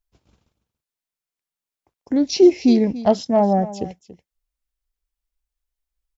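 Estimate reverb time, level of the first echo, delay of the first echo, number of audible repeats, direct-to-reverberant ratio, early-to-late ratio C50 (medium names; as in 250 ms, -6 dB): no reverb, -16.0 dB, 283 ms, 1, no reverb, no reverb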